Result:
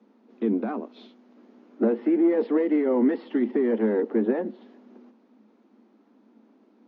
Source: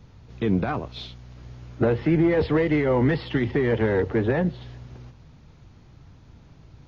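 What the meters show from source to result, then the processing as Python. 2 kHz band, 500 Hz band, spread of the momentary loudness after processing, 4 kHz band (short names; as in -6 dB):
-10.0 dB, -1.5 dB, 9 LU, under -10 dB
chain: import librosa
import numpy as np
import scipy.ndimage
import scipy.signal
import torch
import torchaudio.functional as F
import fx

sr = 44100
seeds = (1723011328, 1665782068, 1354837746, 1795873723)

y = scipy.signal.sosfilt(scipy.signal.cheby1(8, 1.0, 210.0, 'highpass', fs=sr, output='sos'), x)
y = fx.tilt_eq(y, sr, slope=-4.5)
y = F.gain(torch.from_numpy(y), -6.0).numpy()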